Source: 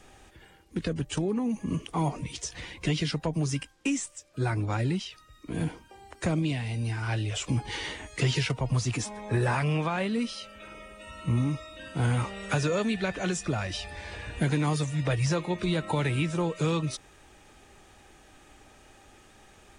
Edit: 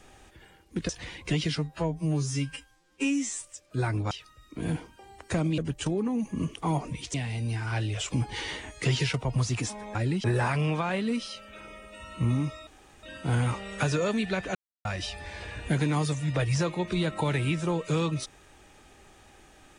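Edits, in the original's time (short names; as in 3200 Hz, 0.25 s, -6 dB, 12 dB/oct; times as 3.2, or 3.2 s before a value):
0.89–2.45 move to 6.5
3.14–4.07 stretch 2×
4.74–5.03 move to 9.31
11.74 insert room tone 0.36 s
13.26–13.56 mute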